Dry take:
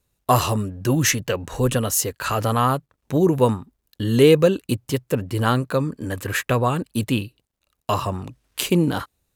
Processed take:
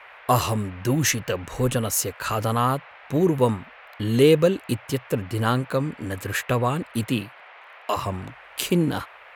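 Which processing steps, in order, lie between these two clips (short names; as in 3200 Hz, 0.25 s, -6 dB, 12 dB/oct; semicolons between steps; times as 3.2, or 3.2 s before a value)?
band noise 530–2500 Hz -44 dBFS; 7.07–7.96 HPF 96 Hz -> 280 Hz 24 dB/oct; gain -2.5 dB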